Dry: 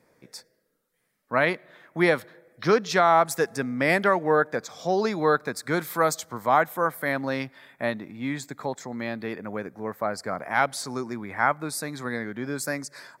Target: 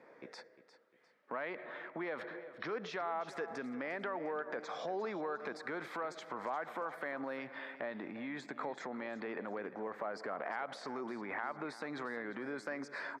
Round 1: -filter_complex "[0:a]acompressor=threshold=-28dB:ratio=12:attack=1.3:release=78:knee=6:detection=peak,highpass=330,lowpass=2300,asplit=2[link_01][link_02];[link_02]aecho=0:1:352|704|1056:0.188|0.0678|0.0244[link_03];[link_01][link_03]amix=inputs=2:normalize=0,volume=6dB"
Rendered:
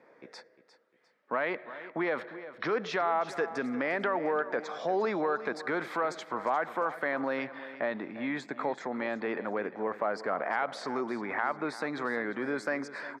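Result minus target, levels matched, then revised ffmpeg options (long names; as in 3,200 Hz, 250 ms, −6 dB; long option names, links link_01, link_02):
downward compressor: peak gain reduction −9.5 dB
-filter_complex "[0:a]acompressor=threshold=-38.5dB:ratio=12:attack=1.3:release=78:knee=6:detection=peak,highpass=330,lowpass=2300,asplit=2[link_01][link_02];[link_02]aecho=0:1:352|704|1056:0.188|0.0678|0.0244[link_03];[link_01][link_03]amix=inputs=2:normalize=0,volume=6dB"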